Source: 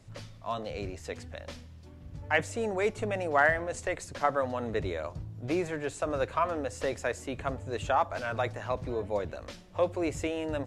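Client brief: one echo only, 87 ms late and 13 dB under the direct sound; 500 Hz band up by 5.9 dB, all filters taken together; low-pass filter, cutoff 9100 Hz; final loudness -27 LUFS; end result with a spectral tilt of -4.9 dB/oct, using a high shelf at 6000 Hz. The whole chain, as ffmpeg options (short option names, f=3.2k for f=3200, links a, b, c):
-af "lowpass=9.1k,equalizer=f=500:t=o:g=7,highshelf=f=6k:g=9,aecho=1:1:87:0.224,volume=0.5dB"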